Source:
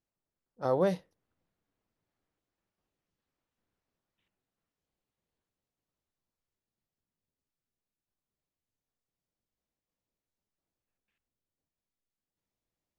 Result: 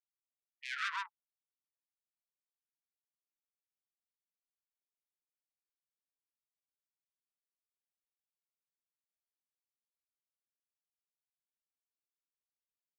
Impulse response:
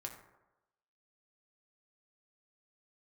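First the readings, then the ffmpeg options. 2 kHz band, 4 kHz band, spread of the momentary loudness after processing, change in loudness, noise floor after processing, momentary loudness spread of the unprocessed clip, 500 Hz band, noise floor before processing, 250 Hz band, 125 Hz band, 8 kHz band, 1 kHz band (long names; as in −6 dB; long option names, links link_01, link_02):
+10.0 dB, +7.5 dB, 11 LU, −9.0 dB, below −85 dBFS, 10 LU, below −40 dB, below −85 dBFS, below −40 dB, below −40 dB, +2.0 dB, −4.5 dB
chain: -filter_complex "[0:a]highpass=frequency=130:width=0.5412,highpass=frequency=130:width=1.3066,afftfilt=real='re*gte(hypot(re,im),0.0158)':imag='im*gte(hypot(re,im),0.0158)':win_size=1024:overlap=0.75,asoftclip=type=tanh:threshold=-30.5dB,aeval=exprs='0.0299*(cos(1*acos(clip(val(0)/0.0299,-1,1)))-cos(1*PI/2))+0.0075*(cos(2*acos(clip(val(0)/0.0299,-1,1)))-cos(2*PI/2))':channel_layout=same,asplit=2[link_01][link_02];[link_02]aecho=0:1:131:0.668[link_03];[link_01][link_03]amix=inputs=2:normalize=0,afftfilt=real='re*gte(b*sr/1024,820*pow(2400/820,0.5+0.5*sin(2*PI*0.65*pts/sr)))':imag='im*gte(b*sr/1024,820*pow(2400/820,0.5+0.5*sin(2*PI*0.65*pts/sr)))':win_size=1024:overlap=0.75,volume=7dB"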